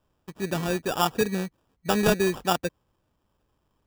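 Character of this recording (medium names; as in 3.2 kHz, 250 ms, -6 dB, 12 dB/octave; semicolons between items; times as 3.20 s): aliases and images of a low sample rate 2.1 kHz, jitter 0%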